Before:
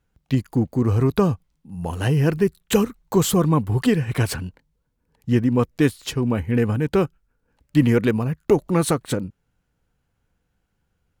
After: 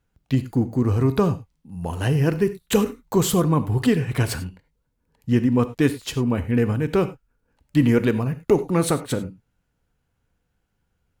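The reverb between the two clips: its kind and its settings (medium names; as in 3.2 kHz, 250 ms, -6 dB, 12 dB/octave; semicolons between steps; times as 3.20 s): gated-style reverb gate 120 ms flat, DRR 11.5 dB; trim -1 dB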